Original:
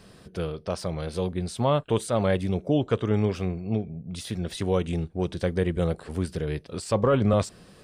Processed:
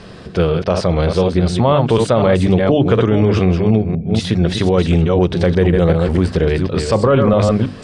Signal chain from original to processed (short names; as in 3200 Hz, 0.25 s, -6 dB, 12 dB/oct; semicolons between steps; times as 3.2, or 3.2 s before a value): reverse delay 0.247 s, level -7 dB; air absorption 99 m; notches 50/100/150/200/250/300 Hz; maximiser +19.5 dB; gain -3.5 dB